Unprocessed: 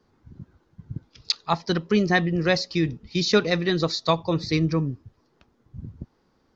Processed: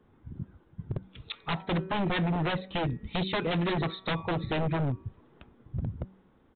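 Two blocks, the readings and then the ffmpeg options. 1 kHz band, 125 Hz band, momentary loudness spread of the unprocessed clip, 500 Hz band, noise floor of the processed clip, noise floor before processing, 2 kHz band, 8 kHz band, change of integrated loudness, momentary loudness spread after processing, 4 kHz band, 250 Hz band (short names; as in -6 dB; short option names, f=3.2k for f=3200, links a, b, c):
-4.5 dB, -3.5 dB, 19 LU, -8.5 dB, -63 dBFS, -67 dBFS, -7.5 dB, n/a, -8.0 dB, 15 LU, -9.0 dB, -7.0 dB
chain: -af "lowshelf=f=400:g=4,dynaudnorm=f=280:g=9:m=11.5dB,bandreject=f=189.7:t=h:w=4,bandreject=f=379.4:t=h:w=4,bandreject=f=569.1:t=h:w=4,bandreject=f=758.8:t=h:w=4,bandreject=f=948.5:t=h:w=4,bandreject=f=1.1382k:t=h:w=4,bandreject=f=1.3279k:t=h:w=4,bandreject=f=1.5176k:t=h:w=4,bandreject=f=1.7073k:t=h:w=4,bandreject=f=1.897k:t=h:w=4,bandreject=f=2.0867k:t=h:w=4,bandreject=f=2.2764k:t=h:w=4,bandreject=f=2.4661k:t=h:w=4,acompressor=threshold=-26dB:ratio=2,aresample=8000,aeval=exprs='0.0708*(abs(mod(val(0)/0.0708+3,4)-2)-1)':c=same,aresample=44100"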